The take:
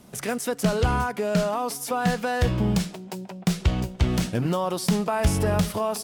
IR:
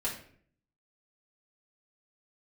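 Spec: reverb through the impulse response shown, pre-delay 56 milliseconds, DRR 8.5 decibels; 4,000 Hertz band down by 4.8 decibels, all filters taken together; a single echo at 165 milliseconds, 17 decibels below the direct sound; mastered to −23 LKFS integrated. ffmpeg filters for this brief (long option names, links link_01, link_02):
-filter_complex "[0:a]equalizer=frequency=4000:width_type=o:gain=-6.5,aecho=1:1:165:0.141,asplit=2[link_01][link_02];[1:a]atrim=start_sample=2205,adelay=56[link_03];[link_02][link_03]afir=irnorm=-1:irlink=0,volume=-13dB[link_04];[link_01][link_04]amix=inputs=2:normalize=0,volume=2dB"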